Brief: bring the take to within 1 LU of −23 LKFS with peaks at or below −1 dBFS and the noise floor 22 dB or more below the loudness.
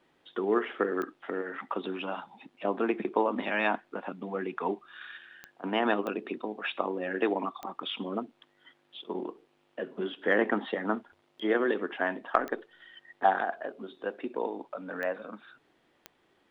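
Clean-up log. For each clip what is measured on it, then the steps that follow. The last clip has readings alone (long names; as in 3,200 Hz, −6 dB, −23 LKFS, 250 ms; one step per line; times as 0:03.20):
number of clicks 7; integrated loudness −32.0 LKFS; sample peak −6.0 dBFS; target loudness −23.0 LKFS
→ click removal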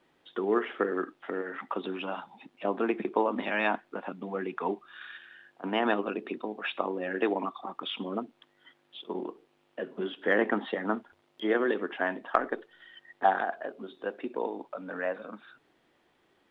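number of clicks 0; integrated loudness −32.0 LKFS; sample peak −6.0 dBFS; target loudness −23.0 LKFS
→ level +9 dB
brickwall limiter −1 dBFS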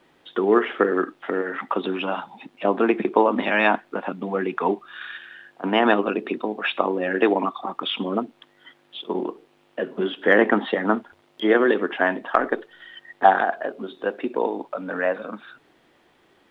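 integrated loudness −23.0 LKFS; sample peak −1.0 dBFS; background noise floor −61 dBFS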